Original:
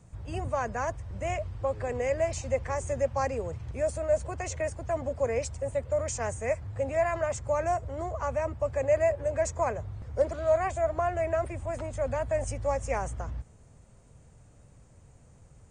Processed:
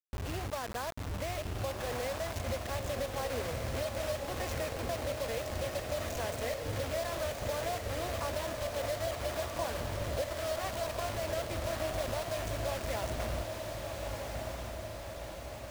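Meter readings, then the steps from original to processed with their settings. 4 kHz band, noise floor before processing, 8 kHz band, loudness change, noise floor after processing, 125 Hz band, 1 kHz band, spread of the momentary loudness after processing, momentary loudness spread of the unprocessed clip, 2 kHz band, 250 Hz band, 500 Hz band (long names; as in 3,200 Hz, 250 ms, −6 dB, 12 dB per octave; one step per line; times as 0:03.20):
can't be measured, −56 dBFS, −2.0 dB, −6.0 dB, −42 dBFS, −3.0 dB, −5.5 dB, 4 LU, 8 LU, −1.5 dB, −2.0 dB, −7.0 dB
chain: low-pass filter 3,400 Hz 12 dB per octave
downward compressor 6 to 1, threshold −38 dBFS, peak gain reduction 17.5 dB
bit reduction 7 bits
on a send: feedback delay with all-pass diffusion 1,341 ms, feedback 62%, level −3.5 dB
on the sum: level +2.5 dB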